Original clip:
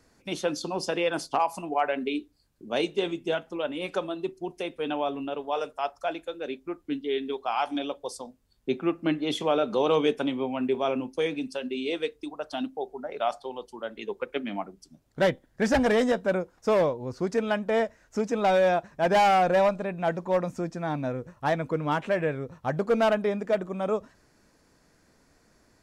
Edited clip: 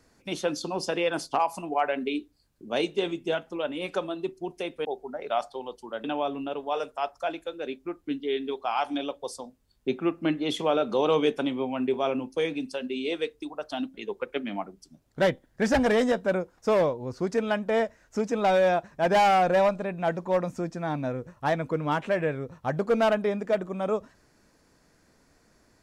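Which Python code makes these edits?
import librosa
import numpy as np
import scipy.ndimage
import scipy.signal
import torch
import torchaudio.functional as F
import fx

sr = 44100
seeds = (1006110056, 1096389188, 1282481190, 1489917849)

y = fx.edit(x, sr, fx.move(start_s=12.75, length_s=1.19, to_s=4.85), tone=tone)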